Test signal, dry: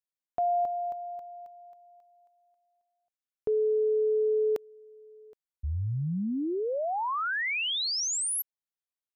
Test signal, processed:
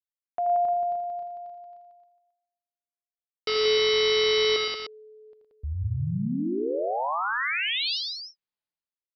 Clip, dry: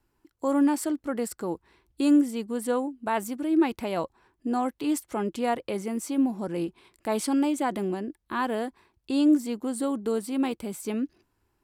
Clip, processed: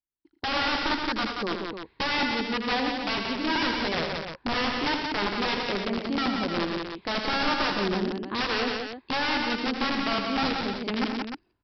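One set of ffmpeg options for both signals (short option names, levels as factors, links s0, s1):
-af "agate=range=0.0224:threshold=0.00355:ratio=3:release=449:detection=peak,aresample=11025,aeval=exprs='(mod(13.3*val(0)+1,2)-1)/13.3':c=same,aresample=44100,aecho=1:1:81|114|179|303:0.422|0.335|0.596|0.398"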